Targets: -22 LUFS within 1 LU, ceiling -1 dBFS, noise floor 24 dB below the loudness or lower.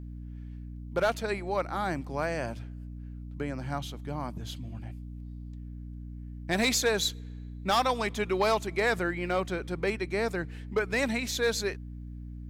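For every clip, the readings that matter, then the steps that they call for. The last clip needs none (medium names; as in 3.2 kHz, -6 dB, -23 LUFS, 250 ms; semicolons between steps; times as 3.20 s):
clipped samples 0.2%; clipping level -18.5 dBFS; hum 60 Hz; highest harmonic 300 Hz; hum level -38 dBFS; loudness -30.0 LUFS; peak level -18.5 dBFS; loudness target -22.0 LUFS
-> clip repair -18.5 dBFS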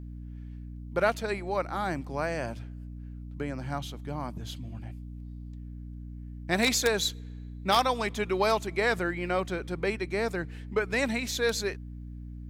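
clipped samples 0.0%; hum 60 Hz; highest harmonic 300 Hz; hum level -38 dBFS
-> hum notches 60/120/180/240/300 Hz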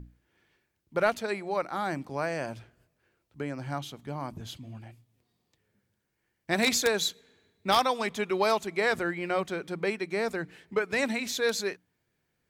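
hum not found; loudness -29.5 LUFS; peak level -9.0 dBFS; loudness target -22.0 LUFS
-> trim +7.5 dB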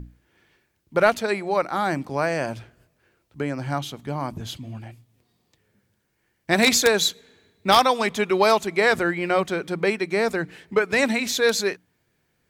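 loudness -22.0 LUFS; peak level -1.5 dBFS; noise floor -71 dBFS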